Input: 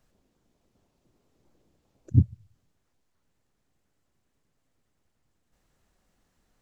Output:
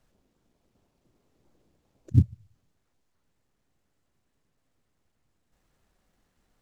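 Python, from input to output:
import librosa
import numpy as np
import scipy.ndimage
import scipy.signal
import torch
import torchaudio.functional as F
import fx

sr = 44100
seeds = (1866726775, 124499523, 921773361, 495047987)

y = fx.dead_time(x, sr, dead_ms=0.086)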